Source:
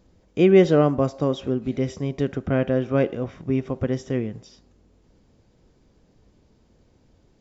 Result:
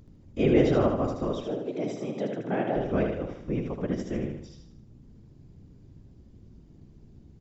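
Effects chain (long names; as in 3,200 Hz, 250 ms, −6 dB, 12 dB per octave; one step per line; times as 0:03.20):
mains hum 60 Hz, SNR 21 dB
random phases in short frames
0:01.44–0:02.76: frequency shifter +110 Hz
on a send: repeating echo 77 ms, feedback 43%, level −5 dB
on the sum: level −7 dB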